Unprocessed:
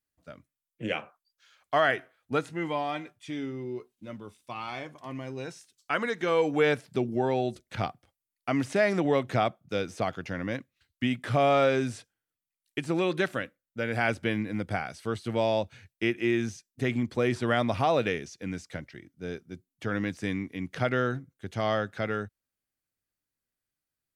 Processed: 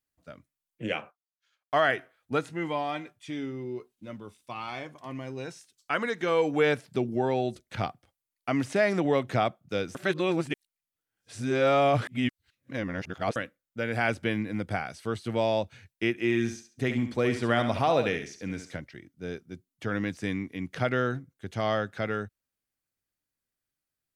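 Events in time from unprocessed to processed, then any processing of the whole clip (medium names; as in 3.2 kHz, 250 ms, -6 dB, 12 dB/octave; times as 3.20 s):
0.98–1.92 s: expander -53 dBFS
9.95–13.36 s: reverse
16.17–18.76 s: thinning echo 69 ms, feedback 28%, high-pass 220 Hz, level -8 dB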